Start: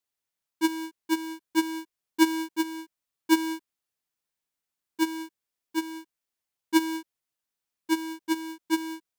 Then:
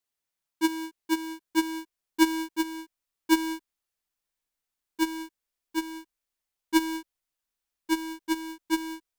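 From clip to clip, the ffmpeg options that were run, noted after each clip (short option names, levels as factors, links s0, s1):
-af "asubboost=boost=5.5:cutoff=51"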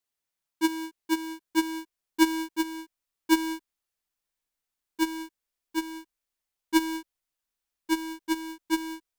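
-af anull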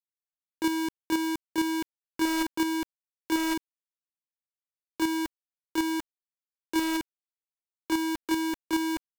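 -af "areverse,acompressor=threshold=0.0224:ratio=8,areverse,acrusher=bits=6:mix=0:aa=0.000001,volume=2.37"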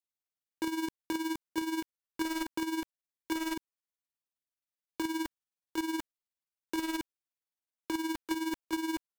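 -af "acompressor=threshold=0.0355:ratio=6,tremolo=f=19:d=0.62"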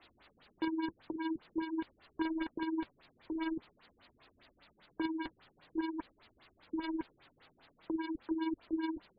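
-af "aeval=exprs='val(0)+0.5*0.00841*sgn(val(0))':c=same,flanger=delay=2.8:depth=4.9:regen=-53:speed=0.47:shape=sinusoidal,afftfilt=real='re*lt(b*sr/1024,370*pow(5000/370,0.5+0.5*sin(2*PI*5*pts/sr)))':imag='im*lt(b*sr/1024,370*pow(5000/370,0.5+0.5*sin(2*PI*5*pts/sr)))':win_size=1024:overlap=0.75,volume=1.12"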